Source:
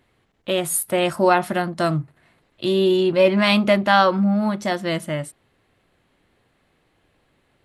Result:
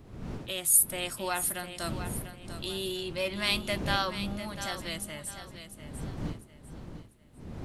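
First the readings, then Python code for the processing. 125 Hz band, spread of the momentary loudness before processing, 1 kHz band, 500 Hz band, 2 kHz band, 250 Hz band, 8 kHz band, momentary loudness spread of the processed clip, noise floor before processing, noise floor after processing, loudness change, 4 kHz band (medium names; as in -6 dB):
-10.5 dB, 12 LU, -15.0 dB, -17.5 dB, -10.5 dB, -16.5 dB, +2.0 dB, 20 LU, -66 dBFS, -53 dBFS, -11.0 dB, -6.0 dB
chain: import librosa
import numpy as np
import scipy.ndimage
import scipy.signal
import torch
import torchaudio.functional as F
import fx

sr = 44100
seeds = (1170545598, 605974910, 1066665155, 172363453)

y = fx.dmg_wind(x, sr, seeds[0], corner_hz=200.0, level_db=-22.0)
y = scipy.signal.lfilter([1.0, -0.9], [1.0], y)
y = fx.echo_feedback(y, sr, ms=697, feedback_pct=33, wet_db=-10.5)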